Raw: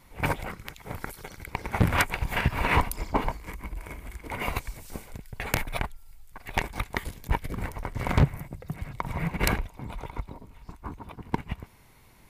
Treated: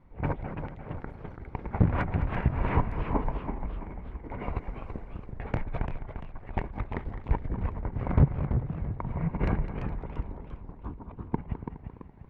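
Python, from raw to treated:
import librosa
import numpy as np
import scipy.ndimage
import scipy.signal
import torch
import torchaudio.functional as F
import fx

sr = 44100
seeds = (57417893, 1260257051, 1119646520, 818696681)

p1 = scipy.signal.sosfilt(scipy.signal.butter(2, 1800.0, 'lowpass', fs=sr, output='sos'), x)
p2 = fx.tilt_shelf(p1, sr, db=5.5, hz=780.0)
p3 = p2 + fx.echo_feedback(p2, sr, ms=208, feedback_pct=49, wet_db=-12.5, dry=0)
p4 = fx.echo_warbled(p3, sr, ms=340, feedback_pct=40, rate_hz=2.8, cents=203, wet_db=-8)
y = F.gain(torch.from_numpy(p4), -5.0).numpy()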